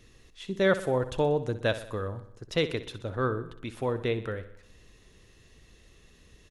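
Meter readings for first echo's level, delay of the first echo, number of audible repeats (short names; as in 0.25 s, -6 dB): -13.5 dB, 62 ms, 5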